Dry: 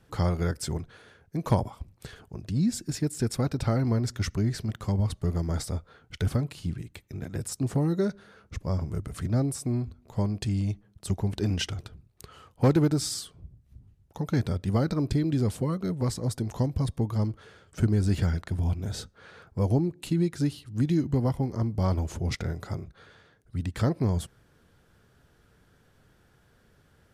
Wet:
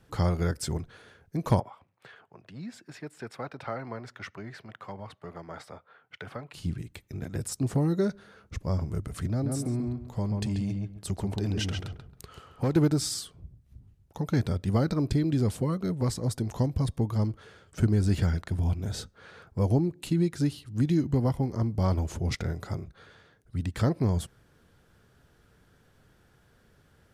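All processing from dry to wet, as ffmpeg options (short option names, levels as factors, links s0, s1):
-filter_complex "[0:a]asettb=1/sr,asplit=3[s0][s1][s2];[s0]atrim=end=1.604[s3];[s1]atrim=start=1.6:end=6.54,asetpts=PTS-STARTPTS,afade=t=in:d=0.004:c=qsin,afade=t=out:st=4.936:d=0.004:c=qsin,highpass=f=110:w=0.5412,highpass=f=110:w=1.3066,acrossover=split=550 3000:gain=0.158 1 0.1[s4][s5][s6];[s4][s5][s6]amix=inputs=3:normalize=0[s7];[s2]atrim=start=6.536[s8];[s3][s7]acrossfade=d=0.004:c1=hsin:c2=qsin[s9];[s9][s8]acrossfade=d=0.004:c1=qsin:c2=hsin,asettb=1/sr,asplit=3[s10][s11][s12];[s10]atrim=end=9.294[s13];[s11]atrim=start=9.29:end=12.76,asetpts=PTS-STARTPTS,afade=t=in:d=0.004:c=qsin,afade=t=out:st=3.466:d=0.004:c=qsin,asplit=2[s14][s15];[s15]adelay=136,lowpass=f=2000:p=1,volume=0.668,asplit=2[s16][s17];[s17]adelay=136,lowpass=f=2000:p=1,volume=0.24,asplit=2[s18][s19];[s19]adelay=136,lowpass=f=2000:p=1,volume=0.24[s20];[s14][s16][s18][s20]amix=inputs=4:normalize=0,atrim=end_sample=153027,acompressor=threshold=0.0447:ratio=2:attack=3.2:release=140:knee=1:detection=peak[s21];[s12]atrim=start=12.756[s22];[s13][s21]acrossfade=d=0.004:c1=hsin:c2=qsin[s23];[s23][s22]acrossfade=d=0.004:c1=qsin:c2=hsin"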